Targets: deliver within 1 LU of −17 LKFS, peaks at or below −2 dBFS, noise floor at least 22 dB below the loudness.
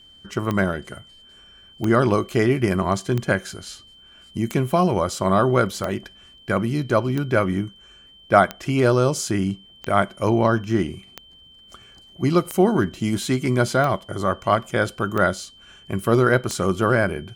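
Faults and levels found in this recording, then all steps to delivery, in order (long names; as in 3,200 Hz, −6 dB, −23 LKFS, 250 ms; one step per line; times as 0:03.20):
number of clicks 13; interfering tone 3,100 Hz; level of the tone −47 dBFS; integrated loudness −21.5 LKFS; sample peak −1.5 dBFS; target loudness −17.0 LKFS
→ click removal
notch filter 3,100 Hz, Q 30
level +4.5 dB
brickwall limiter −2 dBFS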